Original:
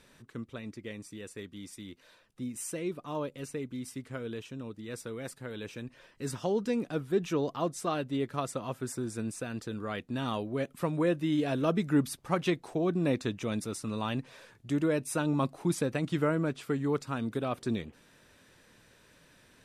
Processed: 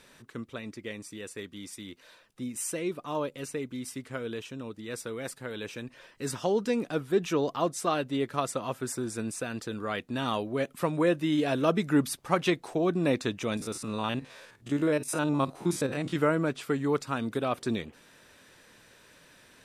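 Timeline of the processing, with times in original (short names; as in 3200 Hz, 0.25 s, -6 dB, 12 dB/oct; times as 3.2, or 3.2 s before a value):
13.57–16.16 stepped spectrum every 50 ms
whole clip: low shelf 260 Hz -7 dB; gain +5 dB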